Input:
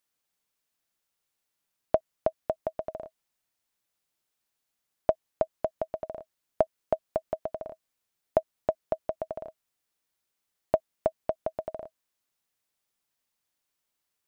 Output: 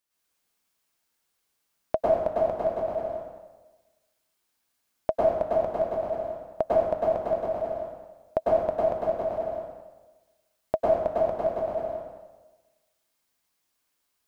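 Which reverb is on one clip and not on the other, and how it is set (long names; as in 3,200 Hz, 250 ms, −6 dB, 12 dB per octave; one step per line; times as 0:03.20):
dense smooth reverb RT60 1.2 s, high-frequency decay 0.85×, pre-delay 90 ms, DRR −8 dB
level −2.5 dB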